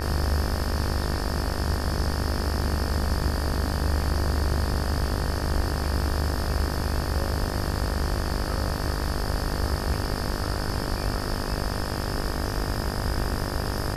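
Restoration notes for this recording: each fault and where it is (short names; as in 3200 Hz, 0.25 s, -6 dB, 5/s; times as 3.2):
buzz 50 Hz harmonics 37 -31 dBFS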